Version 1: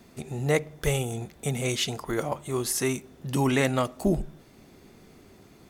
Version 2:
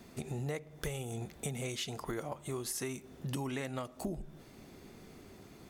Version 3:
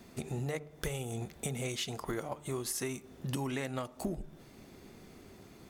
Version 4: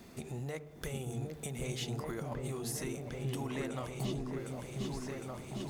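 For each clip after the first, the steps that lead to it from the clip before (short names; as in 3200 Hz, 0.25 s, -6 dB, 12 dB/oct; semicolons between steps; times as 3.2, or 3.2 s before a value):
compressor 10:1, threshold -34 dBFS, peak gain reduction 16 dB; gain -1 dB
de-hum 147.8 Hz, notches 10; in parallel at -9.5 dB: crossover distortion -46.5 dBFS
G.711 law mismatch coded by mu; on a send: repeats that get brighter 0.757 s, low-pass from 400 Hz, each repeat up 2 oct, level 0 dB; on the sum: gain -6 dB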